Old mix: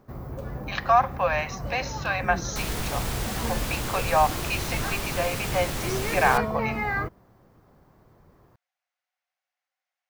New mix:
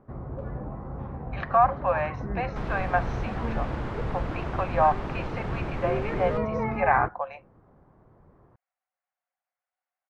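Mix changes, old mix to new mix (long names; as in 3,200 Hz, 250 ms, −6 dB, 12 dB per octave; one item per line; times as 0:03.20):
speech: entry +0.65 s
master: add low-pass filter 1,500 Hz 12 dB per octave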